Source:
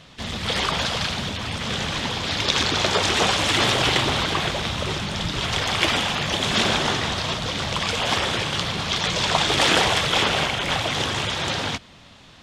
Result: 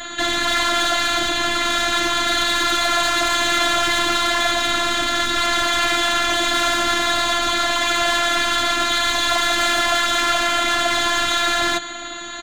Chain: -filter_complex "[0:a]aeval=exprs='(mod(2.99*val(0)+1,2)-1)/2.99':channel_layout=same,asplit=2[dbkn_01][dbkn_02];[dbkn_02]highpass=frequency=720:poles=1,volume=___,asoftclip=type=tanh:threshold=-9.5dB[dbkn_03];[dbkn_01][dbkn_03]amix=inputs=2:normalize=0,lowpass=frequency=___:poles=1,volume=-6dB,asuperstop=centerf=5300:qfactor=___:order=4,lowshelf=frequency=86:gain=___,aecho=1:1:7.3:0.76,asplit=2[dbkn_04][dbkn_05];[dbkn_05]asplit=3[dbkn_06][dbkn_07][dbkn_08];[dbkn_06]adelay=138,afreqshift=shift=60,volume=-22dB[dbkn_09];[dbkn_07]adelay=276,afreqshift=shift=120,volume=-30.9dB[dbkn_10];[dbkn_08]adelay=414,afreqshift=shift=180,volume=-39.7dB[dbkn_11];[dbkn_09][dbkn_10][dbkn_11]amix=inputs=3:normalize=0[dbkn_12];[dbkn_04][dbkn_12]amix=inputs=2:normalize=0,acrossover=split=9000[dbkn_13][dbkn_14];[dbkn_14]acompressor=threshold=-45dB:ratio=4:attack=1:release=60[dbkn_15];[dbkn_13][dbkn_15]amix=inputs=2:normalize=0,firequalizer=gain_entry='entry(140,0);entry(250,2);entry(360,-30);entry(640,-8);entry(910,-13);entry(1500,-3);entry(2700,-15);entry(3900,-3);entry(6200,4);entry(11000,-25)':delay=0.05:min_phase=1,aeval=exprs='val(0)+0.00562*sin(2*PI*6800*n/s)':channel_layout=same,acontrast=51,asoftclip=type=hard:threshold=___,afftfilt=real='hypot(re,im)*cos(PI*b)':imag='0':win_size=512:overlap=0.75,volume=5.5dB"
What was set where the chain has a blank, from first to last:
26dB, 2200, 2.1, -5, -17.5dB